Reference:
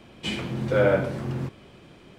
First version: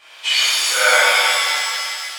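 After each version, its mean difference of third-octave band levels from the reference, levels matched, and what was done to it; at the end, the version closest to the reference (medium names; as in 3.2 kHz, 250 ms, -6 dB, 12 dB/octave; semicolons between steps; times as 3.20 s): 20.0 dB: Bessel high-pass 1.3 kHz, order 4; wow and flutter 18 cents; flutter echo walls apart 9 m, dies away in 0.26 s; pitch-shifted reverb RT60 1.9 s, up +7 st, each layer -2 dB, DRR -10.5 dB; trim +6.5 dB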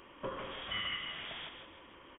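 10.5 dB: differentiator; compression 12:1, threshold -46 dBFS, peak gain reduction 12 dB; feedback delay 160 ms, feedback 39%, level -7.5 dB; frequency inversion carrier 3.5 kHz; trim +11 dB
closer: second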